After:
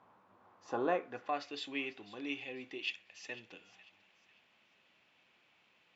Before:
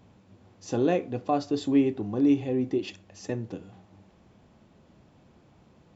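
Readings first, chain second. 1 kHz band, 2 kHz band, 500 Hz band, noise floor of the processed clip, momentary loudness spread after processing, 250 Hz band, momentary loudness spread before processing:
−6.0 dB, +2.0 dB, −11.5 dB, −71 dBFS, 13 LU, −19.0 dB, 16 LU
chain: band-pass filter sweep 1,100 Hz → 2,600 Hz, 0:00.87–0:01.56
delay with a high-pass on its return 496 ms, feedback 36%, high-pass 1,800 Hz, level −16 dB
level +5.5 dB

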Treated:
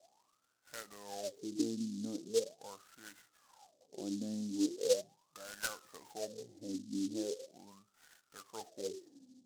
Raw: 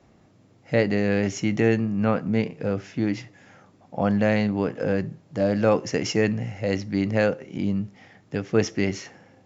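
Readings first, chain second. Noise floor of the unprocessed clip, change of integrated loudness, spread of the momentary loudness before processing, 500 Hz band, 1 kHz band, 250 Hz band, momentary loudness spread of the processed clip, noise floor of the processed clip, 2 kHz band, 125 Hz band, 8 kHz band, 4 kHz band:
−57 dBFS, −15.0 dB, 8 LU, −15.5 dB, −19.0 dB, −16.0 dB, 19 LU, −77 dBFS, −20.0 dB, −27.5 dB, can't be measured, −9.5 dB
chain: in parallel at −2 dB: downward compressor, threshold −33 dBFS, peak gain reduction 17.5 dB
on the sum: LFO wah 0.4 Hz 250–1,500 Hz, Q 22
short delay modulated by noise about 5,300 Hz, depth 0.096 ms
level +1.5 dB

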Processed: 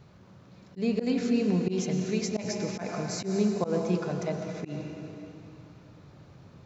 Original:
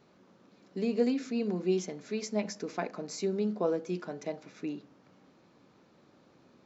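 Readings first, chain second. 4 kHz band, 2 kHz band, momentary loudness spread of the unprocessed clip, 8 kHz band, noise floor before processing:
+5.0 dB, +4.0 dB, 10 LU, can't be measured, −63 dBFS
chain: low shelf with overshoot 170 Hz +14 dB, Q 1.5
dense smooth reverb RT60 3.2 s, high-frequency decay 0.9×, pre-delay 90 ms, DRR 4.5 dB
volume swells 105 ms
level +4.5 dB

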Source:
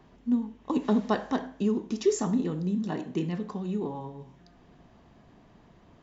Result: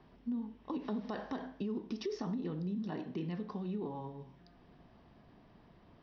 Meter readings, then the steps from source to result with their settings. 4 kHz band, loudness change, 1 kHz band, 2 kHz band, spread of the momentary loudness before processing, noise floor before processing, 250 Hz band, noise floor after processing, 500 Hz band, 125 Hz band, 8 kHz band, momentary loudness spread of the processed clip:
−8.5 dB, −10.5 dB, −10.5 dB, −10.0 dB, 7 LU, −58 dBFS, −10.0 dB, −62 dBFS, −11.5 dB, −8.0 dB, can't be measured, 5 LU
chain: Butterworth low-pass 5,700 Hz 96 dB per octave
brickwall limiter −22 dBFS, peak gain reduction 9.5 dB
downward compressor 2 to 1, threshold −32 dBFS, peak gain reduction 4.5 dB
level −4.5 dB

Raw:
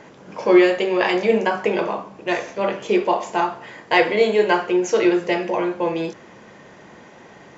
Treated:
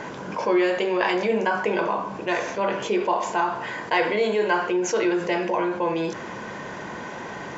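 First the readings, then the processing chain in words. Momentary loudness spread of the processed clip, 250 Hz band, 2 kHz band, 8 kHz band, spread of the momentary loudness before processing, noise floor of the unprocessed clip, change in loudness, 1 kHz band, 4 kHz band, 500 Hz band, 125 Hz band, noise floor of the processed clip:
13 LU, −5.0 dB, −2.5 dB, can't be measured, 11 LU, −46 dBFS, −4.5 dB, −1.5 dB, −4.0 dB, −4.5 dB, −1.5 dB, −35 dBFS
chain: hollow resonant body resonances 1,000/1,500 Hz, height 7 dB, ringing for 20 ms
envelope flattener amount 50%
level −9 dB

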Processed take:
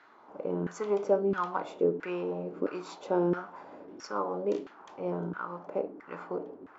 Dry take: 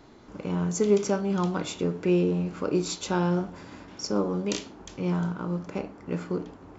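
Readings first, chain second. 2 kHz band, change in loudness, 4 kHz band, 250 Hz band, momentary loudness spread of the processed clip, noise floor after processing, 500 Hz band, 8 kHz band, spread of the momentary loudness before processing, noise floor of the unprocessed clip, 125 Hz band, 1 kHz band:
−3.5 dB, −4.5 dB, −14.5 dB, −8.0 dB, 15 LU, −56 dBFS, −2.0 dB, can't be measured, 13 LU, −49 dBFS, −12.0 dB, 0.0 dB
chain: low-shelf EQ 85 Hz −11 dB
auto-filter band-pass saw down 1.5 Hz 310–1,700 Hz
level +6 dB

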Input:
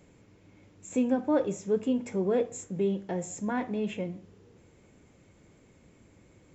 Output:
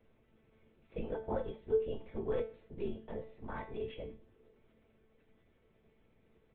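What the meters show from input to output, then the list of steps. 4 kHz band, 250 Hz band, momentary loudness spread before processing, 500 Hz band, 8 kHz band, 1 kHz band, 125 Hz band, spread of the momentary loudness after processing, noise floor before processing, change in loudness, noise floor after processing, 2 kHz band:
−9.0 dB, −16.5 dB, 9 LU, −7.0 dB, can't be measured, −9.5 dB, −9.0 dB, 13 LU, −60 dBFS, −9.5 dB, −71 dBFS, −10.5 dB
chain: comb filter 2.1 ms, depth 47%
linear-prediction vocoder at 8 kHz whisper
tuned comb filter 220 Hz, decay 0.38 s, harmonics all, mix 80%

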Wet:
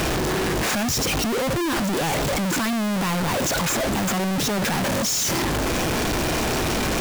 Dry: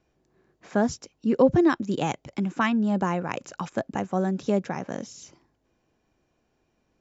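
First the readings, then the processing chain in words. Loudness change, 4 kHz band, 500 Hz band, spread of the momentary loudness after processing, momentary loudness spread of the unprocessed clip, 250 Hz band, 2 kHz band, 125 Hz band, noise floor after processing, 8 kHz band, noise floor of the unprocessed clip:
+3.5 dB, +18.0 dB, +2.0 dB, 2 LU, 13 LU, +2.0 dB, +9.5 dB, +7.0 dB, −23 dBFS, can't be measured, −73 dBFS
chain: sign of each sample alone
level +4.5 dB

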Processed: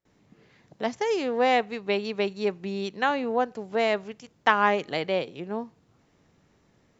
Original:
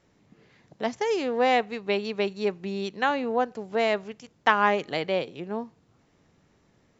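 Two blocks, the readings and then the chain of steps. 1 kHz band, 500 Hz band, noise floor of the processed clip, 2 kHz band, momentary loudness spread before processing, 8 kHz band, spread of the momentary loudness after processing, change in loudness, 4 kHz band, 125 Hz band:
0.0 dB, 0.0 dB, −65 dBFS, 0.0 dB, 11 LU, can't be measured, 11 LU, 0.0 dB, 0.0 dB, 0.0 dB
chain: noise gate with hold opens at −56 dBFS

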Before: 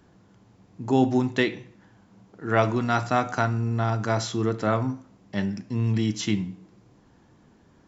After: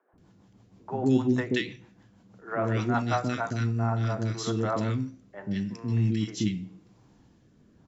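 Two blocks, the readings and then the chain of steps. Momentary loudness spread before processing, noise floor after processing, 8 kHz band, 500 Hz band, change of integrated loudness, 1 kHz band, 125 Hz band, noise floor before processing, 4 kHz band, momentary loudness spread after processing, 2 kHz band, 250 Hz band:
10 LU, −61 dBFS, can't be measured, −4.5 dB, −3.0 dB, −5.5 dB, −1.5 dB, −58 dBFS, −4.0 dB, 11 LU, −5.5 dB, −2.0 dB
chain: rotating-speaker cabinet horn 6.3 Hz, later 0.85 Hz, at 0:03.33
three-band delay without the direct sound mids, lows, highs 130/180 ms, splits 470/1,700 Hz

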